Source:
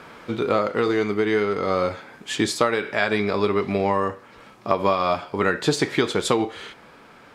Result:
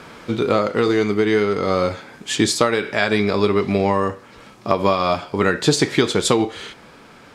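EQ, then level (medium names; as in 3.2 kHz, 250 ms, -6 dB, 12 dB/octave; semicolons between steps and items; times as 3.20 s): bass shelf 460 Hz +6.5 dB; peaking EQ 6.8 kHz +7.5 dB 2.4 oct; 0.0 dB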